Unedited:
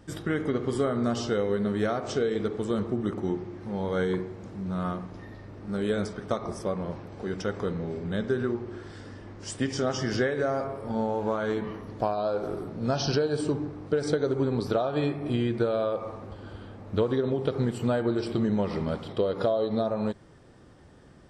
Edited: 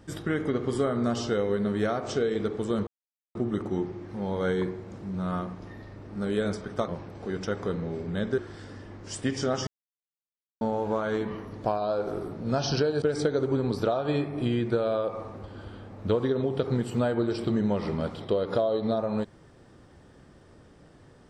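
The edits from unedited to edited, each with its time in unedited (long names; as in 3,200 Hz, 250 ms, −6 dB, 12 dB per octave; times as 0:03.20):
0:02.87: splice in silence 0.48 s
0:06.40–0:06.85: remove
0:08.35–0:08.74: remove
0:10.03–0:10.97: silence
0:13.38–0:13.90: remove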